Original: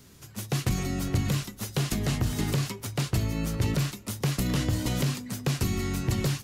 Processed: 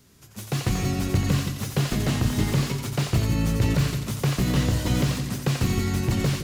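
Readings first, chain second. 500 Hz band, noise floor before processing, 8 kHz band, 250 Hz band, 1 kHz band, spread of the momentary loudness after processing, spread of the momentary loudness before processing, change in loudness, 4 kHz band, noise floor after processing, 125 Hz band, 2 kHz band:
+4.0 dB, -50 dBFS, +2.0 dB, +4.5 dB, +4.5 dB, 4 LU, 4 LU, +4.0 dB, +3.0 dB, -48 dBFS, +4.5 dB, +4.0 dB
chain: two-band feedback delay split 460 Hz, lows 162 ms, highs 88 ms, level -7 dB; level rider gain up to 7.5 dB; slew-rate limiter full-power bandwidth 210 Hz; trim -4 dB

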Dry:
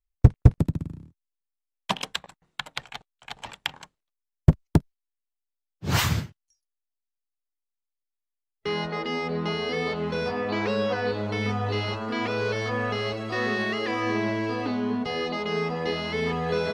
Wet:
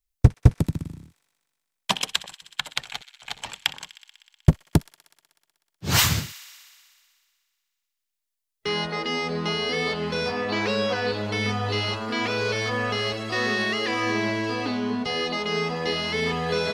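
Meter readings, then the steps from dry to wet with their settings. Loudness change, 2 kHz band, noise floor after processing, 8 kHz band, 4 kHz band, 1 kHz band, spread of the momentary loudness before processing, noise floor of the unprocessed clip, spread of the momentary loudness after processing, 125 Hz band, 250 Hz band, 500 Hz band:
+1.5 dB, +3.5 dB, -82 dBFS, +9.0 dB, +6.5 dB, +1.5 dB, 14 LU, -85 dBFS, 14 LU, 0.0 dB, 0.0 dB, +0.5 dB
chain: treble shelf 2.6 kHz +10 dB; on a send: feedback echo behind a high-pass 62 ms, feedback 81%, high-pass 1.7 kHz, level -18 dB

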